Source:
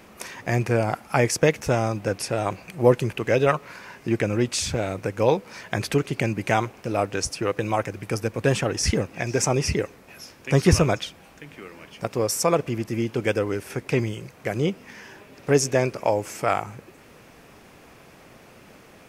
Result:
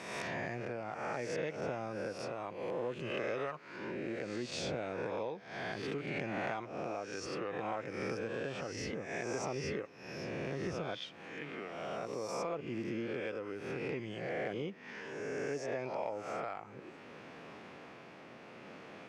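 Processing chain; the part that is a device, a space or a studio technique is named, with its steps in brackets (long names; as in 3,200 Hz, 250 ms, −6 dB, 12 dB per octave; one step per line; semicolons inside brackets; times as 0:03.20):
peak hold with a rise ahead of every peak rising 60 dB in 1.02 s
0:02.50–0:04.36: dynamic equaliser 8,100 Hz, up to +6 dB, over −45 dBFS, Q 0.77
AM radio (band-pass filter 160–3,700 Hz; downward compressor 6 to 1, threshold −32 dBFS, peak gain reduction 20 dB; soft clipping −21 dBFS, distortion −26 dB; amplitude tremolo 0.63 Hz, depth 29%)
level −2.5 dB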